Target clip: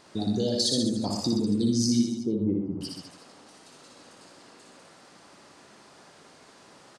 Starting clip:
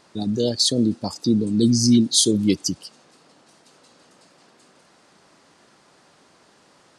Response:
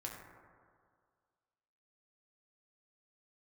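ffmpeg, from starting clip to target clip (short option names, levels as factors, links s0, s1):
-filter_complex "[0:a]asplit=2[s0][s1];[s1]aecho=0:1:80:0.355[s2];[s0][s2]amix=inputs=2:normalize=0,acompressor=threshold=0.0447:ratio=3,asettb=1/sr,asplit=3[s3][s4][s5];[s3]atrim=end=2.084[s6];[s4]atrim=start=2.08:end=2.81,asetpts=PTS-STARTPTS,afade=t=in:d=0.004:c=qsin,afade=t=out:st=0.726:d=0.004:c=qsin,lowpass=f=1100:w=0.5412,lowpass=f=1100:w=1.3066[s7];[s5]atrim=start=2.806[s8];[s6][s7]acrossfade=d=0.004:c1=hsin:c2=qsin[s9];[s9][s8]acrossfade=d=0.004:c1=qsin:c2=hsin,asplit=2[s10][s11];[s11]aecho=0:1:60|126|198.6|278.5|366.3:0.631|0.398|0.251|0.158|0.1[s12];[s10][s12]amix=inputs=2:normalize=0"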